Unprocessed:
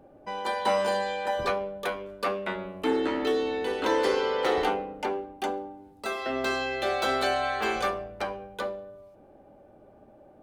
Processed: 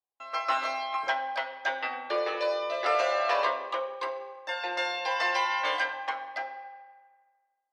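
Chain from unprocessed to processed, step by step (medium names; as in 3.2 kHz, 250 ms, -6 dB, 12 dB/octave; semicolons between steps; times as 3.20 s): spectral noise reduction 8 dB; gate -54 dBFS, range -36 dB; on a send at -6.5 dB: reverberation RT60 2.0 s, pre-delay 4 ms; on the sum: speed mistake 33 rpm record played at 45 rpm; band-pass 590–4000 Hz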